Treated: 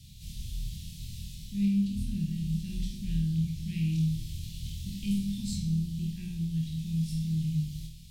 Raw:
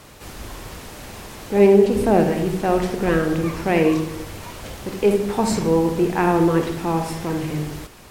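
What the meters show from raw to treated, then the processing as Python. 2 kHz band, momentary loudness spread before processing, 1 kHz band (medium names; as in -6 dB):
-25.0 dB, 20 LU, under -40 dB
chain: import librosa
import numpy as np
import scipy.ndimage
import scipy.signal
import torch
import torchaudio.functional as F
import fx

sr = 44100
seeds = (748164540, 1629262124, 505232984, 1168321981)

p1 = scipy.signal.sosfilt(scipy.signal.ellip(3, 1.0, 50, [160.0, 3500.0], 'bandstop', fs=sr, output='sos'), x)
p2 = fx.high_shelf(p1, sr, hz=3600.0, db=-10.5)
p3 = fx.rider(p2, sr, range_db=4, speed_s=0.5)
p4 = p3 + fx.room_flutter(p3, sr, wall_m=4.3, rt60_s=0.38, dry=0)
y = p4 * 10.0 ** (-4.5 / 20.0)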